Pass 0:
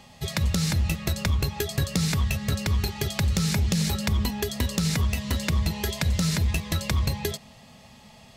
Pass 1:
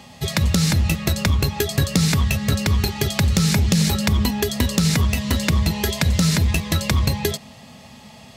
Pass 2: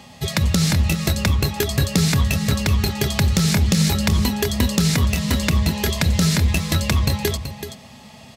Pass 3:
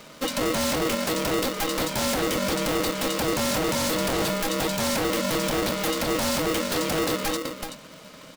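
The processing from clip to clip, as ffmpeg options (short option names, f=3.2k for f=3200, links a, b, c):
-af "highpass=58,equalizer=f=260:w=2.6:g=3,volume=6.5dB"
-af "aecho=1:1:379:0.316"
-af "aeval=exprs='0.133*(abs(mod(val(0)/0.133+3,4)-2)-1)':c=same,aeval=exprs='val(0)*sgn(sin(2*PI*400*n/s))':c=same,volume=-2.5dB"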